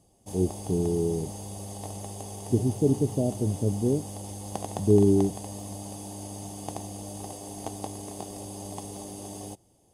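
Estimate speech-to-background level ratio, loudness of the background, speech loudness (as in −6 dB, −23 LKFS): 12.0 dB, −38.0 LKFS, −26.0 LKFS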